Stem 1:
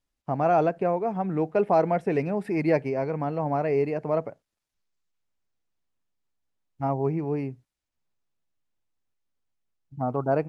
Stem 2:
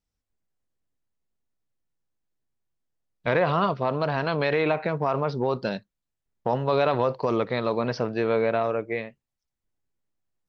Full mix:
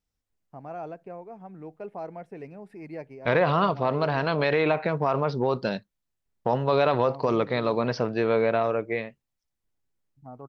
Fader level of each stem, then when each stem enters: -15.5 dB, +0.5 dB; 0.25 s, 0.00 s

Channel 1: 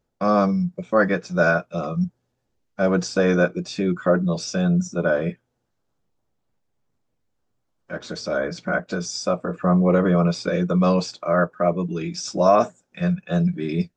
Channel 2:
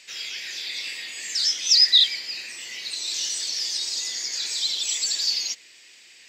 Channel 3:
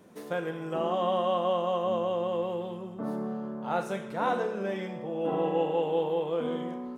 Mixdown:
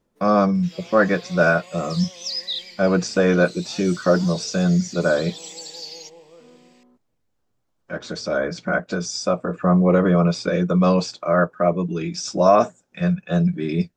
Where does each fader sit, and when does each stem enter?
+1.5 dB, -12.0 dB, -18.0 dB; 0.00 s, 0.55 s, 0.00 s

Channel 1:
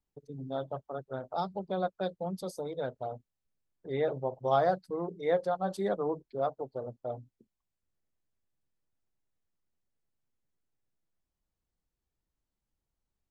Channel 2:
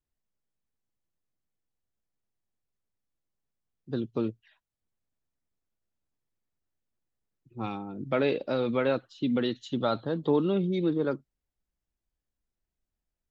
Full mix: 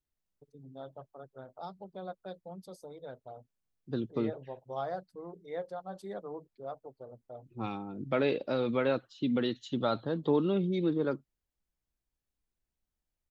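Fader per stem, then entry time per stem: -10.0 dB, -2.5 dB; 0.25 s, 0.00 s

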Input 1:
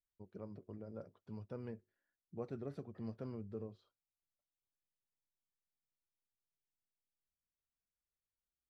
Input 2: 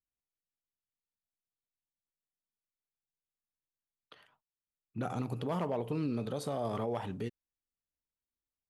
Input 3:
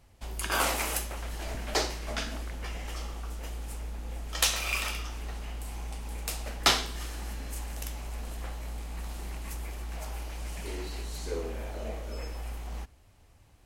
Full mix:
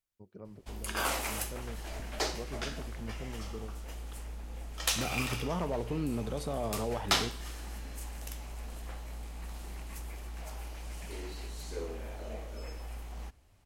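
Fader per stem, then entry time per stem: +1.0 dB, 0.0 dB, -4.5 dB; 0.00 s, 0.00 s, 0.45 s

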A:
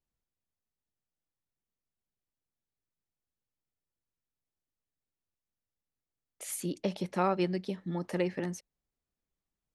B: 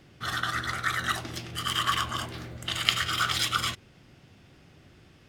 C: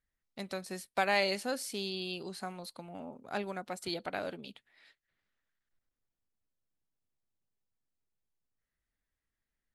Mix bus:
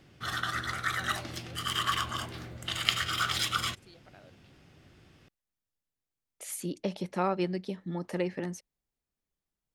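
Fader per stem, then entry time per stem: -0.5 dB, -3.0 dB, -19.5 dB; 0.00 s, 0.00 s, 0.00 s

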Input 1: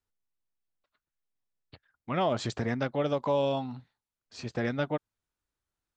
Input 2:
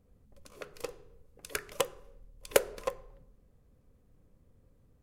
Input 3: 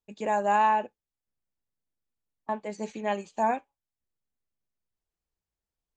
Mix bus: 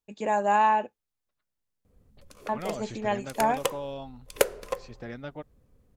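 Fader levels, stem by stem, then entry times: -9.0 dB, +2.0 dB, +1.0 dB; 0.45 s, 1.85 s, 0.00 s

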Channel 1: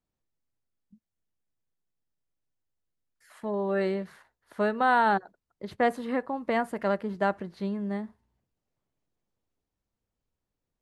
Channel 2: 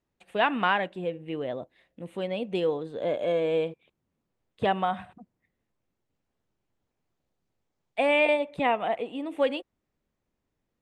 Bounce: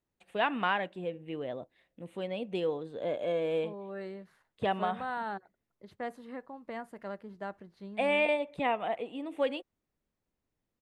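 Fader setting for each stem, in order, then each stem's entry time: -13.5 dB, -5.0 dB; 0.20 s, 0.00 s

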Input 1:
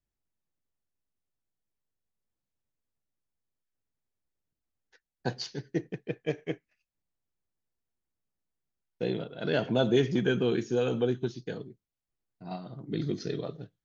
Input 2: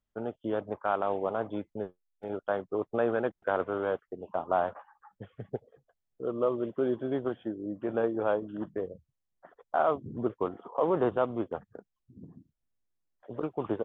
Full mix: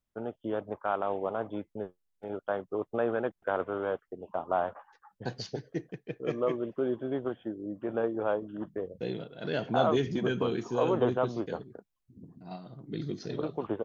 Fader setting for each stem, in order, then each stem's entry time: -4.0 dB, -1.5 dB; 0.00 s, 0.00 s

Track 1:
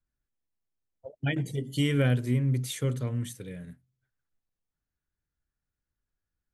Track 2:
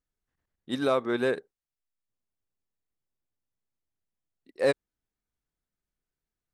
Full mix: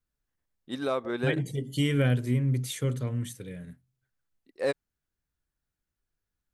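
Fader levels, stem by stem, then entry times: 0.0 dB, -4.0 dB; 0.00 s, 0.00 s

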